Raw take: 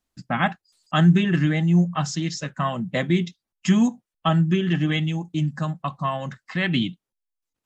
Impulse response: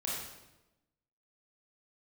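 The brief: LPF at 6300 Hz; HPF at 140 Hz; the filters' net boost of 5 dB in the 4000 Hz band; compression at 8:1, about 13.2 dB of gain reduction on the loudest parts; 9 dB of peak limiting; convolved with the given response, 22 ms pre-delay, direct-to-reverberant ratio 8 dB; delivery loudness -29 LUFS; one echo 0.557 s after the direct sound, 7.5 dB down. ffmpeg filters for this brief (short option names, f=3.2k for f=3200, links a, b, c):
-filter_complex "[0:a]highpass=140,lowpass=6.3k,equalizer=f=4k:t=o:g=7.5,acompressor=threshold=-27dB:ratio=8,alimiter=limit=-22.5dB:level=0:latency=1,aecho=1:1:557:0.422,asplit=2[a][b];[1:a]atrim=start_sample=2205,adelay=22[c];[b][c]afir=irnorm=-1:irlink=0,volume=-11.5dB[d];[a][d]amix=inputs=2:normalize=0,volume=3dB"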